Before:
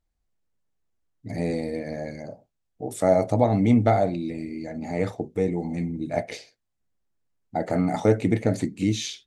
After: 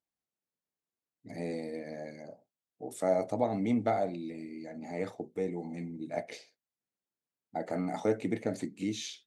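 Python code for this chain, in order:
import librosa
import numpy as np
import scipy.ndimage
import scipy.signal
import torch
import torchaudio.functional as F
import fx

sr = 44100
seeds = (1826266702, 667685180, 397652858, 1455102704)

y = scipy.signal.sosfilt(scipy.signal.butter(2, 190.0, 'highpass', fs=sr, output='sos'), x)
y = F.gain(torch.from_numpy(y), -8.5).numpy()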